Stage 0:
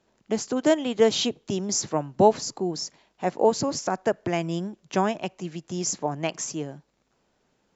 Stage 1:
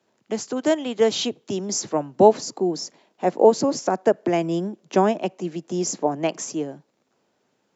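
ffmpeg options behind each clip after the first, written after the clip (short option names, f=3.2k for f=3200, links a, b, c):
-filter_complex "[0:a]acrossover=split=190|730|1900[a][b][c][d];[a]highpass=f=100:w=0.5412,highpass=f=100:w=1.3066[e];[b]dynaudnorm=f=430:g=9:m=10dB[f];[e][f][c][d]amix=inputs=4:normalize=0"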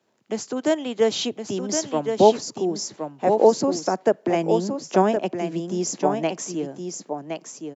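-af "aecho=1:1:1067:0.473,volume=-1dB"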